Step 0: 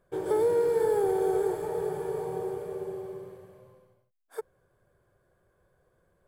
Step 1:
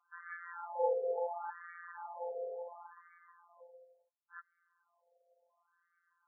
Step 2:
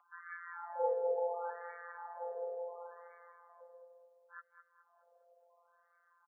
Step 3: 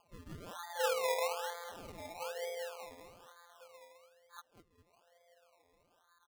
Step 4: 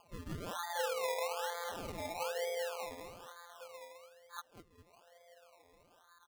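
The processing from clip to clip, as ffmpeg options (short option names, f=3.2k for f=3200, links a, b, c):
-af "afftfilt=real='hypot(re,im)*cos(PI*b)':imag='0':win_size=1024:overlap=0.75,crystalizer=i=3.5:c=0,afftfilt=real='re*between(b*sr/1024,550*pow(1600/550,0.5+0.5*sin(2*PI*0.71*pts/sr))/1.41,550*pow(1600/550,0.5+0.5*sin(2*PI*0.71*pts/sr))*1.41)':imag='im*between(b*sr/1024,550*pow(1600/550,0.5+0.5*sin(2*PI*0.71*pts/sr))/1.41,550*pow(1600/550,0.5+0.5*sin(2*PI*0.71*pts/sr))*1.41)':win_size=1024:overlap=0.75,volume=3.5dB"
-filter_complex "[0:a]asplit=2[a][b];[b]adelay=209,lowpass=f=1.5k:p=1,volume=-9dB,asplit=2[c][d];[d]adelay=209,lowpass=f=1.5k:p=1,volume=0.44,asplit=2[e][f];[f]adelay=209,lowpass=f=1.5k:p=1,volume=0.44,asplit=2[g][h];[h]adelay=209,lowpass=f=1.5k:p=1,volume=0.44,asplit=2[i][j];[j]adelay=209,lowpass=f=1.5k:p=1,volume=0.44[k];[a][c][e][g][i][k]amix=inputs=6:normalize=0,acrossover=split=750|830|1100[l][m][n][o];[m]acompressor=mode=upward:threshold=-56dB:ratio=2.5[p];[l][p][n][o]amix=inputs=4:normalize=0,volume=-1.5dB"
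-af "acrusher=samples=23:mix=1:aa=0.000001:lfo=1:lforange=13.8:lforate=1.1"
-af "acompressor=threshold=-40dB:ratio=6,volume=6dB"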